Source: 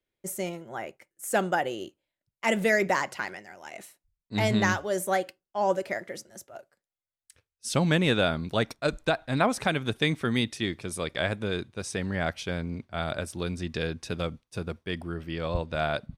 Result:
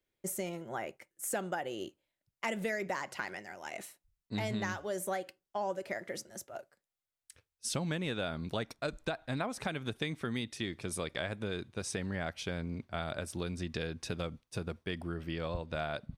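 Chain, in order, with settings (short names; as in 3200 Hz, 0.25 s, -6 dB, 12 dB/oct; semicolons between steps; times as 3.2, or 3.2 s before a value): compressor 4:1, threshold -34 dBFS, peak gain reduction 13.5 dB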